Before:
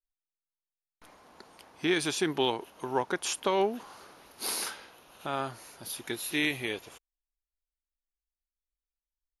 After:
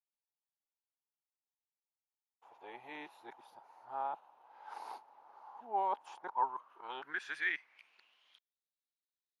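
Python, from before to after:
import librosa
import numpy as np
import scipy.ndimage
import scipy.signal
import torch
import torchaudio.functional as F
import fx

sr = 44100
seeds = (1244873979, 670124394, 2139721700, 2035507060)

y = x[::-1].copy()
y = fx.filter_sweep_bandpass(y, sr, from_hz=860.0, to_hz=3900.0, start_s=6.22, end_s=8.62, q=7.1)
y = y * librosa.db_to_amplitude(3.5)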